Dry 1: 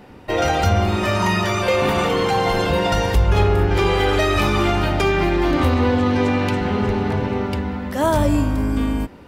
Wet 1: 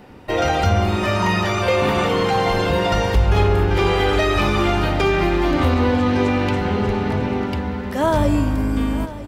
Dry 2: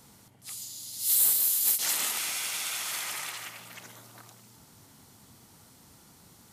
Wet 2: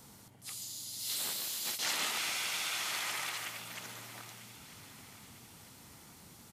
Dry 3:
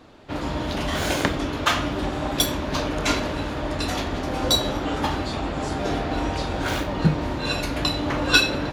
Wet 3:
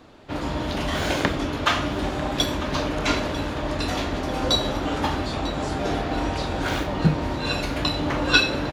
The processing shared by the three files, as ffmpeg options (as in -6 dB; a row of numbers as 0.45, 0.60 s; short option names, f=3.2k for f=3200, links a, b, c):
-filter_complex "[0:a]acrossover=split=5700[a][b];[b]acompressor=threshold=-42dB:ratio=4:attack=1:release=60[c];[a][c]amix=inputs=2:normalize=0,aecho=1:1:946|1892|2838|3784:0.168|0.0806|0.0387|0.0186"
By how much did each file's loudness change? 0.0, -9.5, -0.5 LU